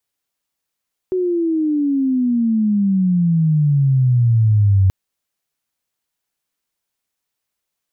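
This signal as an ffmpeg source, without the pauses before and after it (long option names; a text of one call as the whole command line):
ffmpeg -f lavfi -i "aevalsrc='pow(10,(-9.5+6*(t/3.78-1))/20)*sin(2*PI*374*3.78/(-24*log(2)/12)*(exp(-24*log(2)/12*t/3.78)-1))':duration=3.78:sample_rate=44100" out.wav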